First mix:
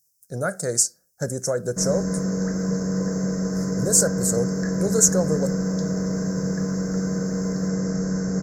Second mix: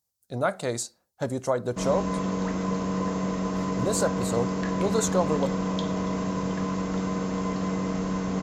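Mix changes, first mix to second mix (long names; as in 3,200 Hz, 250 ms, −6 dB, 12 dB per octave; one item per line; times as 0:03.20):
background: add high-shelf EQ 4,500 Hz +8.5 dB
master: remove drawn EQ curve 110 Hz 0 dB, 160 Hz +9 dB, 250 Hz −3 dB, 490 Hz +4 dB, 1,000 Hz −12 dB, 1,600 Hz +6 dB, 3,100 Hz −28 dB, 5,300 Hz +14 dB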